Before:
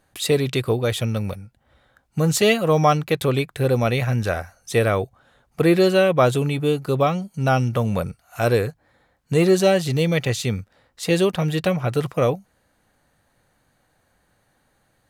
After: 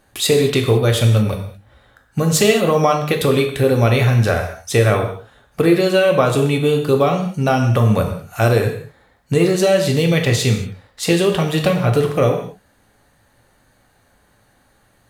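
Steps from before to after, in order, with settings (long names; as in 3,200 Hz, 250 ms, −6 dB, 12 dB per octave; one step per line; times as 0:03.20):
downward compressor, threshold −18 dBFS, peak gain reduction 7.5 dB
reverb whose tail is shaped and stops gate 250 ms falling, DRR 3 dB
level +6 dB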